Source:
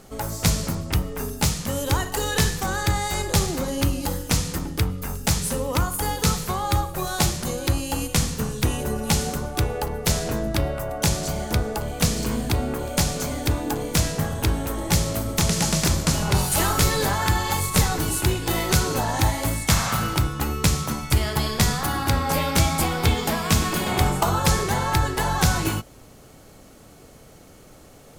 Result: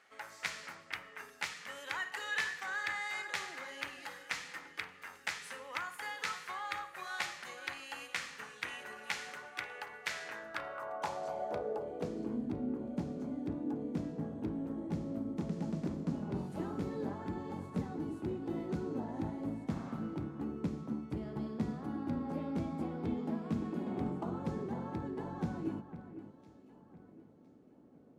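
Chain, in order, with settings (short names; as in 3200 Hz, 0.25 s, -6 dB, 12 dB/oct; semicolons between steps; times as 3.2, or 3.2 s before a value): low shelf 160 Hz -8 dB; echo with dull and thin repeats by turns 0.505 s, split 2400 Hz, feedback 55%, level -11 dB; band-pass sweep 1900 Hz -> 250 Hz, 10.31–12.48; gain -3.5 dB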